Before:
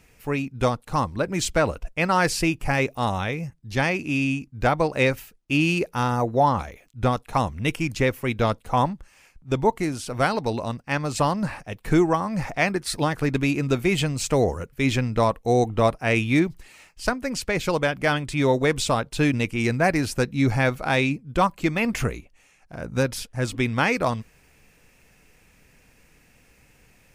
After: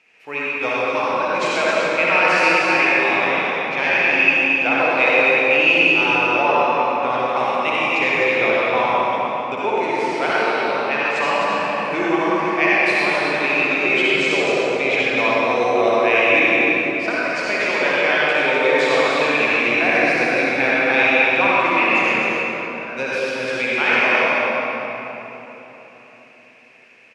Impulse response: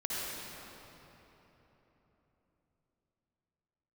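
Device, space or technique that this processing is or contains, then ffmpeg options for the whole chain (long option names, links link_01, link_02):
station announcement: -filter_complex "[0:a]highpass=440,lowpass=4400,equalizer=frequency=2500:width_type=o:width=0.48:gain=10.5,aecho=1:1:189.5|256.6:0.251|0.501[link_01];[1:a]atrim=start_sample=2205[link_02];[link_01][link_02]afir=irnorm=-1:irlink=0"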